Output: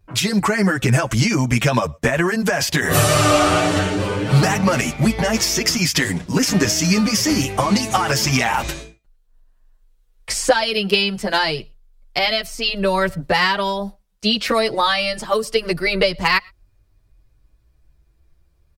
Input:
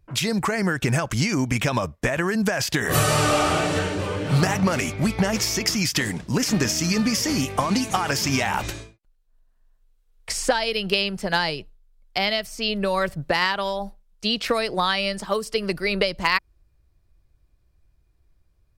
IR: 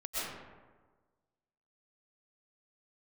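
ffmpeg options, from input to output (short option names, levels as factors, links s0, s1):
-filter_complex "[0:a]asplit=2[s0][s1];[1:a]atrim=start_sample=2205,afade=t=out:st=0.17:d=0.01,atrim=end_sample=7938[s2];[s1][s2]afir=irnorm=-1:irlink=0,volume=0.0631[s3];[s0][s3]amix=inputs=2:normalize=0,asplit=2[s4][s5];[s5]adelay=7.8,afreqshift=0.3[s6];[s4][s6]amix=inputs=2:normalize=1,volume=2.37"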